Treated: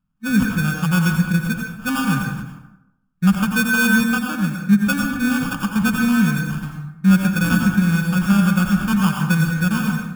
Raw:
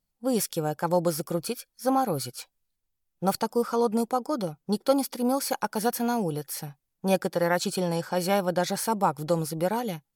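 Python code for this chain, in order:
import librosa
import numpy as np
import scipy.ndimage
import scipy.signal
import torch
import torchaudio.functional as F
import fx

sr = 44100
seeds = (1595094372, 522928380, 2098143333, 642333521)

y = fx.small_body(x, sr, hz=(470.0, 1700.0, 3300.0), ring_ms=45, db=12)
y = fx.sample_hold(y, sr, seeds[0], rate_hz=2000.0, jitter_pct=0)
y = fx.curve_eq(y, sr, hz=(110.0, 200.0, 450.0, 1300.0, 4200.0, 12000.0), db=(0, 10, -29, -3, -12, -7))
y = fx.rev_plate(y, sr, seeds[1], rt60_s=0.86, hf_ratio=0.6, predelay_ms=75, drr_db=1.5)
y = y * 10.0 ** (6.5 / 20.0)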